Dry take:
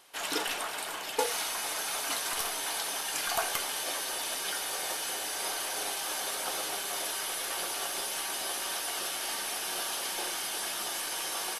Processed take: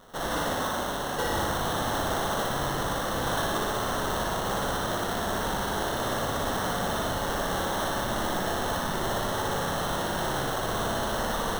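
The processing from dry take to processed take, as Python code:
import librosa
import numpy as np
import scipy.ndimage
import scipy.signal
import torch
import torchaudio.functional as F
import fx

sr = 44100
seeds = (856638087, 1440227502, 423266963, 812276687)

y = fx.highpass(x, sr, hz=1200.0, slope=24, at=(2.46, 3.23))
y = fx.sample_hold(y, sr, seeds[0], rate_hz=2400.0, jitter_pct=0)
y = 10.0 ** (-31.0 / 20.0) * np.tanh(y / 10.0 ** (-31.0 / 20.0))
y = fx.room_flutter(y, sr, wall_m=10.1, rt60_s=1.1)
y = F.gain(torch.from_numpy(y), 5.5).numpy()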